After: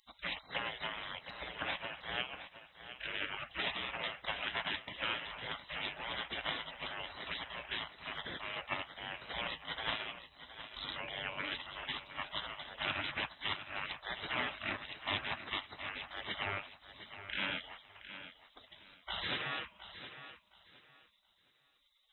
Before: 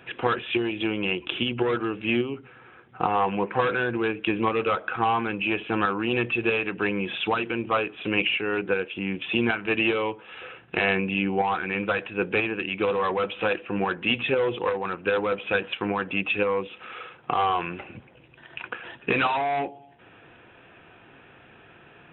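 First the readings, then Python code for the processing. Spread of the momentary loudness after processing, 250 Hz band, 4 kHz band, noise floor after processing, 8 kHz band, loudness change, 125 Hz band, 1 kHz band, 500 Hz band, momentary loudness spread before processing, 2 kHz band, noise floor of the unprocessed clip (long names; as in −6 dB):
13 LU, −24.0 dB, −5.5 dB, −72 dBFS, can't be measured, −14.0 dB, −17.5 dB, −16.0 dB, −22.0 dB, 8 LU, −11.5 dB, −53 dBFS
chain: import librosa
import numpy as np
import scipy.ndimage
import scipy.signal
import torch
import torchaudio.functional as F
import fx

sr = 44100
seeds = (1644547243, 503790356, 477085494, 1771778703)

y = fx.spec_gate(x, sr, threshold_db=-25, keep='weak')
y = fx.echo_feedback(y, sr, ms=715, feedback_pct=24, wet_db=-12.0)
y = y * 10.0 ** (4.0 / 20.0)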